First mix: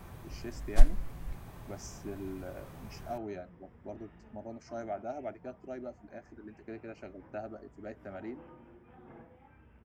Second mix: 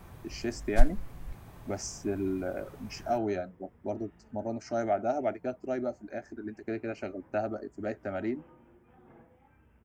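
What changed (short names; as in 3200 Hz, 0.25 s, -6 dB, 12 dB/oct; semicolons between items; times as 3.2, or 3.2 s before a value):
speech +9.5 dB; second sound -3.5 dB; reverb: off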